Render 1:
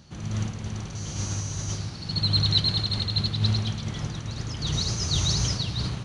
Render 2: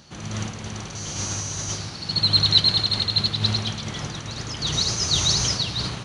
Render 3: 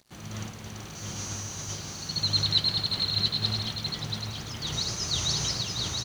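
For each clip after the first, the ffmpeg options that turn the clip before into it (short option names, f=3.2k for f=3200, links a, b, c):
-af "lowshelf=f=230:g=-11,volume=6.5dB"
-filter_complex "[0:a]acrusher=bits=6:mix=0:aa=0.5,asplit=2[a][b];[b]aecho=0:1:682:0.596[c];[a][c]amix=inputs=2:normalize=0,volume=-7.5dB"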